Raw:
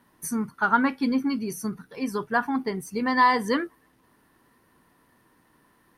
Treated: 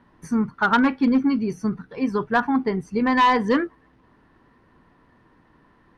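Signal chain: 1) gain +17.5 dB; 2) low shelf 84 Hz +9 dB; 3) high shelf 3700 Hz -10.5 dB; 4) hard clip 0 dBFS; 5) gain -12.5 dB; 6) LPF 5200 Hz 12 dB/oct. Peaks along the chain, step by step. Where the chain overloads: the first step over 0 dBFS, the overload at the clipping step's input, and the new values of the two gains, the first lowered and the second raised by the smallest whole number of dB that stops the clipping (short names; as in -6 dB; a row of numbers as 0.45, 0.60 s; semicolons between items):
+9.0, +9.0, +8.0, 0.0, -12.5, -12.0 dBFS; step 1, 8.0 dB; step 1 +9.5 dB, step 5 -4.5 dB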